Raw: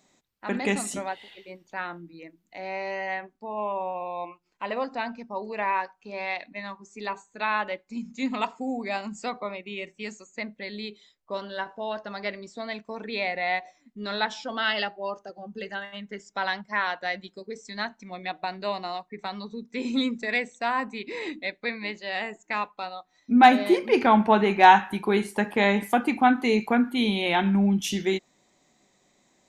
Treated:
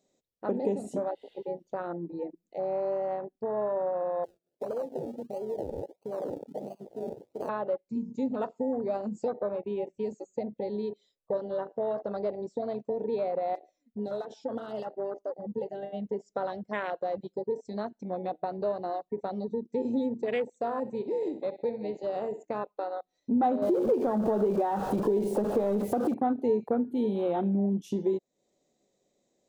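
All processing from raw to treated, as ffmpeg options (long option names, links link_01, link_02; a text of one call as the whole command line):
ffmpeg -i in.wav -filter_complex "[0:a]asettb=1/sr,asplit=3[link_01][link_02][link_03];[link_01]atrim=end=4.244[link_04];[link_02]atrim=start=4.24:end=7.49,asetpts=PTS-STARTPTS,afade=type=in:duration=0.004:curve=qsin,afade=type=out:start_time=3.246:duration=0.004:curve=qsin,acrusher=samples=34:mix=1:aa=0.000001:lfo=1:lforange=20.4:lforate=1.5,acompressor=threshold=-43dB:ratio=2:attack=3.2:release=140:knee=1:detection=peak,highpass=frequency=200:poles=1[link_05];[link_03]atrim=start=7.486[link_06];[link_04][link_05]acrossfade=duration=0.004:curve1=hsin:curve2=qsin[link_07];[link_07][link_06]acrossfade=duration=0.004:curve1=qsin:curve2=hsin,asettb=1/sr,asplit=3[link_08][link_09][link_10];[link_08]atrim=end=13.554[link_11];[link_09]atrim=start=13.55:end=15.83,asetpts=PTS-STARTPTS,afade=type=in:duration=0.004:curve=qsin,afade=type=out:start_time=2.276:duration=0.004:curve=qsin,acompressor=threshold=-28dB:ratio=6:attack=3.2:release=140:knee=1:detection=peak,flanger=delay=2.5:depth=1.9:regen=38:speed=1.3:shape=sinusoidal,volume=29.5dB,asoftclip=hard,volume=-29.5dB[link_12];[link_10]atrim=start=15.826[link_13];[link_11][link_12]acrossfade=duration=0.004:curve1=hsin:curve2=qsin[link_14];[link_14][link_13]acrossfade=duration=0.004:curve1=qsin:curve2=hsin,asettb=1/sr,asplit=3[link_15][link_16][link_17];[link_15]atrim=end=20.494[link_18];[link_16]atrim=start=20.49:end=22.45,asetpts=PTS-STARTPTS,afade=type=in:duration=0.004:curve=qsin,afade=type=out:start_time=1.956:duration=0.004:curve=qsin,equalizer=frequency=7100:width=7.4:gain=7.5,tremolo=f=280:d=0.261,aecho=1:1:64|128|192:0.211|0.0719|0.0244,atrim=end_sample=86436[link_19];[link_17]atrim=start=22.446[link_20];[link_18][link_19]acrossfade=duration=0.004:curve1=hsin:curve2=qsin[link_21];[link_21][link_20]acrossfade=duration=0.004:curve1=qsin:curve2=hsin,asettb=1/sr,asplit=3[link_22][link_23][link_24];[link_22]atrim=end=23.624[link_25];[link_23]atrim=start=23.62:end=26.14,asetpts=PTS-STARTPTS,afade=type=in:duration=0.004:curve=qsin,afade=type=out:start_time=2.516:duration=0.004:curve=qsin,aeval=exprs='val(0)+0.5*0.106*sgn(val(0))':channel_layout=same,acompressor=threshold=-19dB:ratio=2.5:attack=3.2:release=140:knee=1:detection=peak[link_26];[link_24]atrim=start=26.136[link_27];[link_25][link_26]acrossfade=duration=0.004:curve1=hsin:curve2=qsin[link_28];[link_28][link_27]acrossfade=duration=0.004:curve1=qsin:curve2=hsin,equalizer=frequency=500:width_type=o:width=1:gain=12,equalizer=frequency=1000:width_type=o:width=1:gain=-8,equalizer=frequency=2000:width_type=o:width=1:gain=-7,acompressor=threshold=-36dB:ratio=2.5,afwtdn=0.0126,volume=5dB" out.wav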